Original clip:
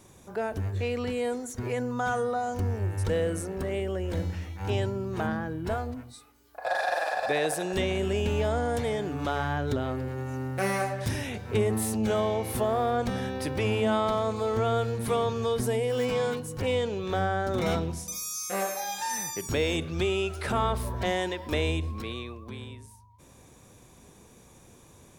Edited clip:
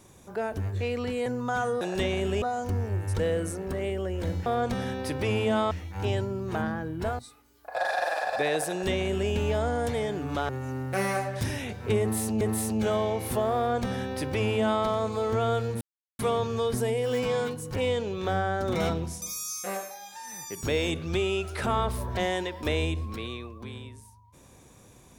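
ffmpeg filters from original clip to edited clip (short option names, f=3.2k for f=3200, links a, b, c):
-filter_complex "[0:a]asplit=12[a][b][c][d][e][f][g][h][i][j][k][l];[a]atrim=end=1.262[m];[b]atrim=start=1.768:end=2.322[n];[c]atrim=start=7.588:end=8.202[o];[d]atrim=start=2.318:end=4.362[p];[e]atrim=start=12.818:end=14.072[q];[f]atrim=start=4.358:end=5.842[r];[g]atrim=start=6.088:end=9.392[s];[h]atrim=start=10.138:end=12.062[t];[i]atrim=start=11.648:end=15.05,asetpts=PTS-STARTPTS,afade=t=out:st=3.398:d=0.004:c=hsin,apad=pad_dur=0.38[u];[j]atrim=start=15.05:end=18.83,asetpts=PTS-STARTPTS,afade=t=in:d=0.004:c=hsin,afade=t=out:st=3.32:d=0.46:silence=0.298538[v];[k]atrim=start=18.83:end=19.13,asetpts=PTS-STARTPTS,volume=-10.5dB[w];[l]atrim=start=19.13,asetpts=PTS-STARTPTS,afade=t=in:d=0.46:silence=0.298538[x];[m][n]acrossfade=d=0.004:c1=hsin:c2=hsin[y];[y][o]acrossfade=d=0.004:c1=hsin:c2=hsin[z];[z][p]acrossfade=d=0.004:c1=hsin:c2=hsin[aa];[aa][q]acrossfade=d=0.004:c1=hsin:c2=hsin[ab];[ab][r]acrossfade=d=0.004:c1=hsin:c2=hsin[ac];[ac][s]acrossfade=d=0.004:c1=hsin:c2=hsin[ad];[ad][t]acrossfade=d=0.004:c1=hsin:c2=hsin[ae];[u][v][w][x]concat=n=4:v=0:a=1[af];[ae][af]acrossfade=d=0.004:c1=hsin:c2=hsin"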